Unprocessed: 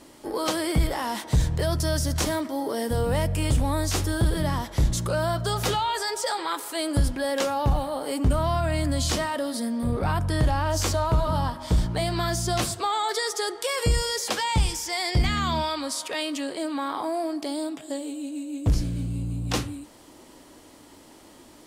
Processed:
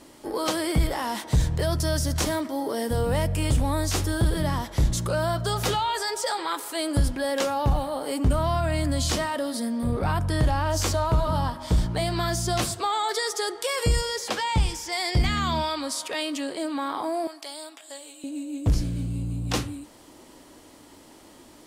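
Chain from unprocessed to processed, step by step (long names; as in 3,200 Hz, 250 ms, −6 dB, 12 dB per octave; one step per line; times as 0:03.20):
0:14.01–0:14.92: high-shelf EQ 5,600 Hz −7 dB
0:17.27–0:18.24: Bessel high-pass filter 1,100 Hz, order 2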